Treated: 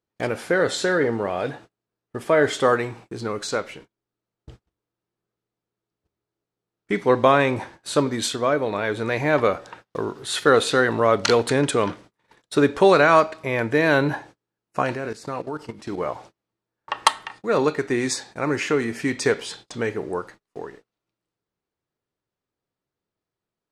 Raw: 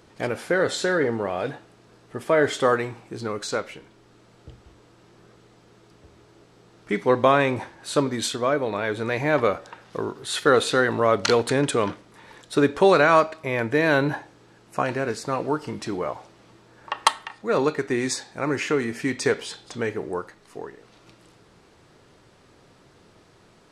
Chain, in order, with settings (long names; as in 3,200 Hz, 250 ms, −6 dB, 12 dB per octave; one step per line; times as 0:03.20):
noise gate −44 dBFS, range −34 dB
0:14.95–0:16.00: output level in coarse steps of 15 dB
level +1.5 dB